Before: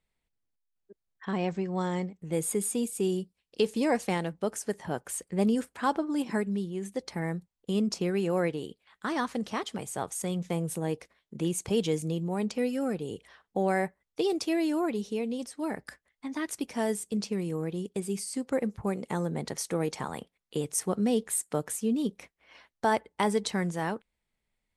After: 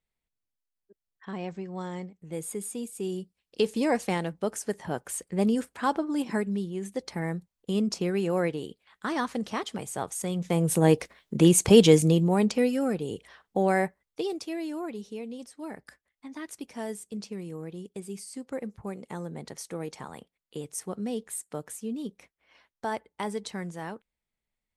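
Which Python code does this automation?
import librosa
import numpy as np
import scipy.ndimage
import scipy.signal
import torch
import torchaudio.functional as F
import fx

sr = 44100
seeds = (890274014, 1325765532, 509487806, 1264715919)

y = fx.gain(x, sr, db=fx.line((2.93, -5.5), (3.61, 1.0), (10.34, 1.0), (10.86, 11.5), (11.95, 11.5), (12.83, 3.0), (13.82, 3.0), (14.45, -6.0)))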